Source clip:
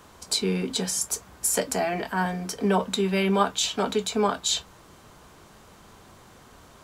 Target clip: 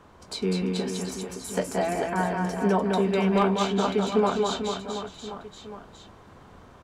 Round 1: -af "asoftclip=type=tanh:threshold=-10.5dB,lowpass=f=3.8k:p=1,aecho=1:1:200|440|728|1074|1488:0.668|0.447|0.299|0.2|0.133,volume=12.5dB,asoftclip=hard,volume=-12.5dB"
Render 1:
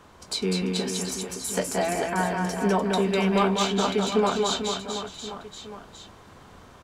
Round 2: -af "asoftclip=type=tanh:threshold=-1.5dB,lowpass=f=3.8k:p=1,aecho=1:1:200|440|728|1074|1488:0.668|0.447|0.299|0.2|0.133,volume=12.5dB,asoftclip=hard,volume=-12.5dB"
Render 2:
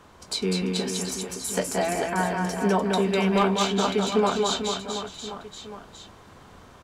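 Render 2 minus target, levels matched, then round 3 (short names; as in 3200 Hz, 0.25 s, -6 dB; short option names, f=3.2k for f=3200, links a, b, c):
4000 Hz band +4.5 dB
-af "asoftclip=type=tanh:threshold=-1.5dB,lowpass=f=1.5k:p=1,aecho=1:1:200|440|728|1074|1488:0.668|0.447|0.299|0.2|0.133,volume=12.5dB,asoftclip=hard,volume=-12.5dB"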